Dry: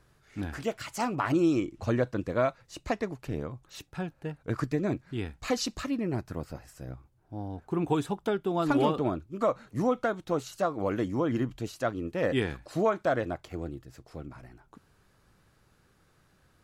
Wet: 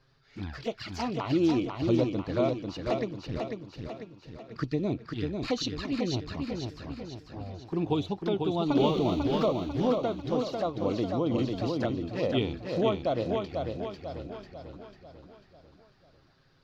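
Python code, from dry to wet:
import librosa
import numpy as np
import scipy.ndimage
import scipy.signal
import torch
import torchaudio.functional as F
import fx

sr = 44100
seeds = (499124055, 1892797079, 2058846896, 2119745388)

y = fx.zero_step(x, sr, step_db=-31.0, at=(8.76, 9.46))
y = fx.high_shelf_res(y, sr, hz=6500.0, db=-12.5, q=3.0)
y = fx.env_flanger(y, sr, rest_ms=7.9, full_db=-26.0)
y = fx.comb_fb(y, sr, f0_hz=230.0, decay_s=1.2, harmonics='all', damping=0.0, mix_pct=90, at=(3.38, 4.56))
y = fx.echo_feedback(y, sr, ms=495, feedback_pct=49, wet_db=-4.5)
y = fx.band_squash(y, sr, depth_pct=100, at=(11.38, 11.9))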